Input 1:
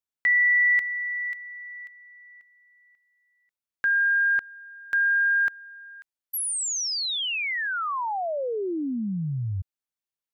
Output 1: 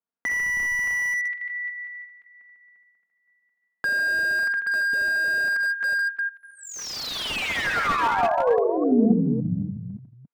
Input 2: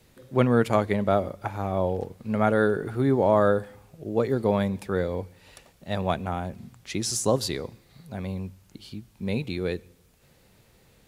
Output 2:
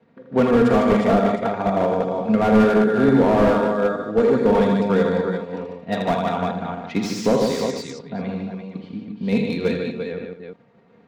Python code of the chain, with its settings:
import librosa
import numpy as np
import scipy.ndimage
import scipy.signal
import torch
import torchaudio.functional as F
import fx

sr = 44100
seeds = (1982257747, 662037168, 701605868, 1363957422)

p1 = fx.reverse_delay(x, sr, ms=283, wet_db=-7.0)
p2 = scipy.signal.sosfilt(scipy.signal.butter(4, 7700.0, 'lowpass', fs=sr, output='sos'), p1)
p3 = fx.env_lowpass(p2, sr, base_hz=1400.0, full_db=-19.5)
p4 = scipy.signal.sosfilt(scipy.signal.butter(4, 120.0, 'highpass', fs=sr, output='sos'), p3)
p5 = p4 + 0.55 * np.pad(p4, (int(4.3 * sr / 1000.0), 0))[:len(p4)]
p6 = fx.transient(p5, sr, attack_db=3, sustain_db=-4)
p7 = fx.level_steps(p6, sr, step_db=12)
p8 = p6 + (p7 * librosa.db_to_amplitude(1.0))
p9 = np.clip(p8, -10.0 ** (-6.0 / 20.0), 10.0 ** (-6.0 / 20.0))
p10 = p9 + fx.echo_multitap(p9, sr, ms=(46, 82, 148, 181, 228, 347), db=(-11.5, -6.5, -6.0, -16.5, -16.5, -7.5), dry=0)
p11 = fx.slew_limit(p10, sr, full_power_hz=140.0)
y = p11 * librosa.db_to_amplitude(-1.0)